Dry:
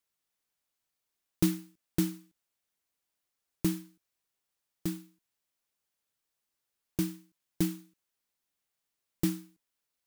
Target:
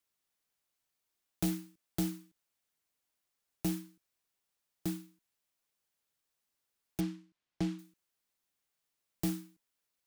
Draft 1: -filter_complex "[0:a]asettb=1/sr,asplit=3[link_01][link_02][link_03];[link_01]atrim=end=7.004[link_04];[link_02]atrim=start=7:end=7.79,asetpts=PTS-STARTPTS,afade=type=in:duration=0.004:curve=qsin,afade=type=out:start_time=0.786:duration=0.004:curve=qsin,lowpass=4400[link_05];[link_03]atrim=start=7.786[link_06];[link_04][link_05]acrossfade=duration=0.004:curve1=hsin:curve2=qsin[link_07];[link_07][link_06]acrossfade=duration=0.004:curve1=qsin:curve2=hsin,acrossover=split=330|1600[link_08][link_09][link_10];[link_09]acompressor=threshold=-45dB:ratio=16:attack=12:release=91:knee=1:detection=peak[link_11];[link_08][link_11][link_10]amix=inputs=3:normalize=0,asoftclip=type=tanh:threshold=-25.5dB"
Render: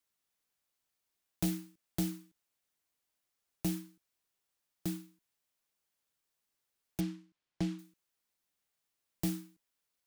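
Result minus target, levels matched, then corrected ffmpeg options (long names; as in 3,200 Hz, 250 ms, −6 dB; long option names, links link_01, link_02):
downward compressor: peak gain reduction +7 dB
-filter_complex "[0:a]asettb=1/sr,asplit=3[link_01][link_02][link_03];[link_01]atrim=end=7.004[link_04];[link_02]atrim=start=7:end=7.79,asetpts=PTS-STARTPTS,afade=type=in:duration=0.004:curve=qsin,afade=type=out:start_time=0.786:duration=0.004:curve=qsin,lowpass=4400[link_05];[link_03]atrim=start=7.786[link_06];[link_04][link_05]acrossfade=duration=0.004:curve1=hsin:curve2=qsin[link_07];[link_07][link_06]acrossfade=duration=0.004:curve1=qsin:curve2=hsin,acrossover=split=330|1600[link_08][link_09][link_10];[link_09]acompressor=threshold=-37.5dB:ratio=16:attack=12:release=91:knee=1:detection=peak[link_11];[link_08][link_11][link_10]amix=inputs=3:normalize=0,asoftclip=type=tanh:threshold=-25.5dB"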